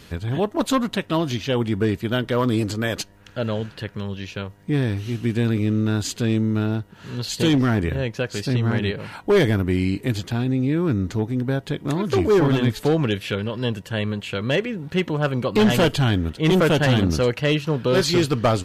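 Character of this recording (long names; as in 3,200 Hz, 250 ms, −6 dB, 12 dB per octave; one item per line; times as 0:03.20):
background noise floor −47 dBFS
spectral slope −5.5 dB per octave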